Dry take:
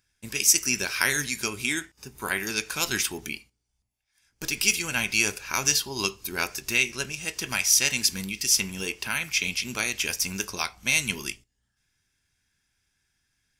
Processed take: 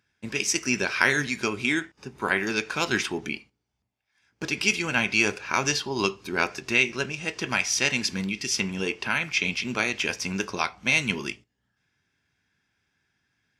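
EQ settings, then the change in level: Bessel high-pass 150 Hz, order 2; tape spacing loss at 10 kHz 23 dB; +7.5 dB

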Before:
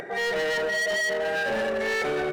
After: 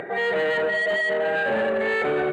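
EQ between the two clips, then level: boxcar filter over 8 samples; high-pass 93 Hz 12 dB/octave; +4.0 dB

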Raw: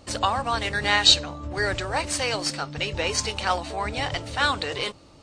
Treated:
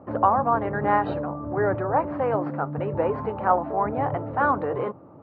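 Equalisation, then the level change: high-pass 110 Hz 24 dB/octave; low-pass 1.2 kHz 24 dB/octave; distance through air 79 m; +6.0 dB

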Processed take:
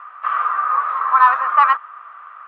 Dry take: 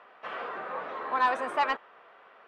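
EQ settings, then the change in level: resonant high-pass 1.2 kHz, resonance Q 9.4; distance through air 320 m; +7.0 dB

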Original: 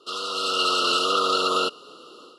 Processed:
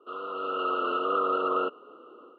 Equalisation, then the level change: high-pass 220 Hz 24 dB/octave; low-pass 2.2 kHz 24 dB/octave; distance through air 350 m; -1.5 dB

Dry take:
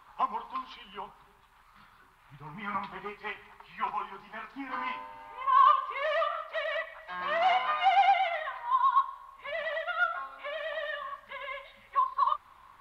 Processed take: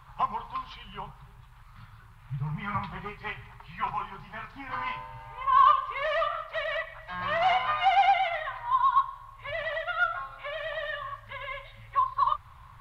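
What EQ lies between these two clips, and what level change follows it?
resonant low shelf 180 Hz +13 dB, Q 3; +2.0 dB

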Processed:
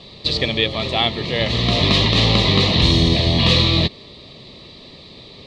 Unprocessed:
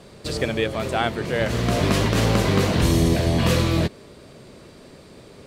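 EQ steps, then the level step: Butterworth band-stop 1.5 kHz, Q 3.3; resonant low-pass 3.9 kHz, resonance Q 5.1; peaking EQ 460 Hz -3.5 dB 2 oct; +3.5 dB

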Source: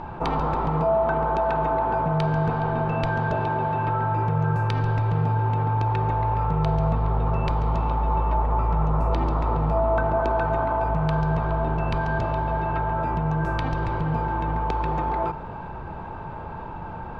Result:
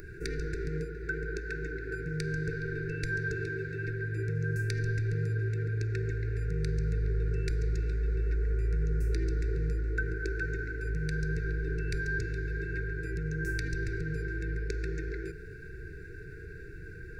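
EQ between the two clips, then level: brick-wall FIR band-stop 470–1400 Hz; tone controls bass -3 dB, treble +13 dB; static phaser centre 850 Hz, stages 6; -1.5 dB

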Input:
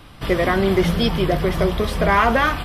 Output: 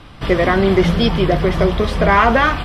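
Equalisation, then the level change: distance through air 59 m; +4.0 dB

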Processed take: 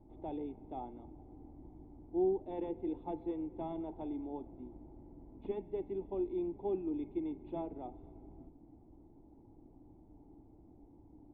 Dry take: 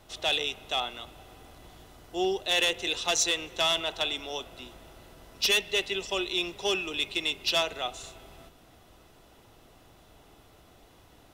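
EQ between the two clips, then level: cascade formant filter u; bass shelf 190 Hz +10 dB; treble shelf 2.4 kHz +7.5 dB; +4.0 dB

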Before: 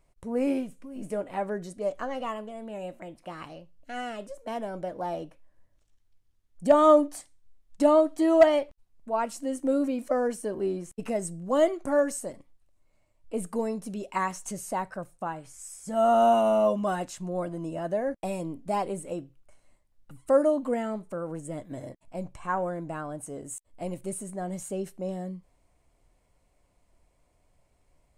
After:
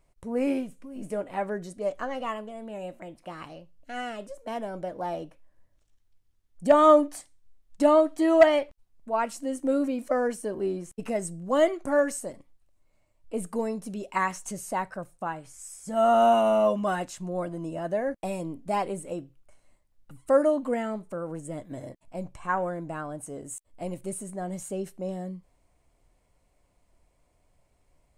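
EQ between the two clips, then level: dynamic bell 2 kHz, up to +5 dB, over -39 dBFS, Q 0.98; 0.0 dB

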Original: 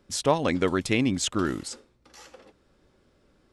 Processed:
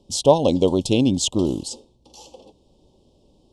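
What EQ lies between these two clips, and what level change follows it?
Chebyshev band-stop 920–3000 Hz, order 3; low-pass 9.8 kHz 12 dB/octave; dynamic bell 550 Hz, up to +5 dB, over -40 dBFS, Q 4.2; +6.5 dB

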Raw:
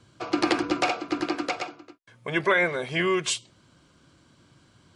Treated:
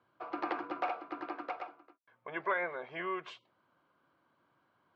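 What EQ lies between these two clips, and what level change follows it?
band-pass filter 970 Hz, Q 1.2; distance through air 180 m; -5.5 dB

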